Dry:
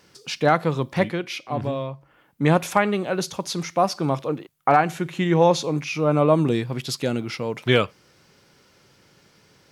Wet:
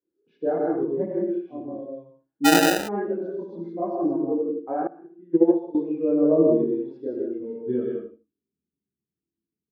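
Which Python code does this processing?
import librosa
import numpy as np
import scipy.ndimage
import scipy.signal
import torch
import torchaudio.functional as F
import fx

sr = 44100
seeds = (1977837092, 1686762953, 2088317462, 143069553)

y = fx.bin_expand(x, sr, power=1.5)
y = scipy.signal.sosfilt(scipy.signal.butter(2, 7100.0, 'lowpass', fs=sr, output='sos'), y)
y = fx.echo_feedback(y, sr, ms=77, feedback_pct=21, wet_db=-8)
y = fx.chorus_voices(y, sr, voices=6, hz=0.21, base_ms=27, depth_ms=3.4, mix_pct=60)
y = scipy.signal.sosfilt(scipy.signal.butter(2, 88.0, 'highpass', fs=sr, output='sos'), y)
y = fx.small_body(y, sr, hz=(320.0, 1600.0, 3400.0), ring_ms=25, db=14)
y = fx.filter_sweep_lowpass(y, sr, from_hz=510.0, to_hz=170.0, start_s=6.98, end_s=8.85, q=1.5)
y = fx.rev_gated(y, sr, seeds[0], gate_ms=200, shape='rising', drr_db=-1.0)
y = fx.sample_hold(y, sr, seeds[1], rate_hz=1100.0, jitter_pct=0, at=(2.44, 2.87), fade=0.02)
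y = fx.low_shelf(y, sr, hz=230.0, db=-11.5)
y = fx.upward_expand(y, sr, threshold_db=-20.0, expansion=2.5, at=(4.87, 5.75))
y = y * 10.0 ** (-4.5 / 20.0)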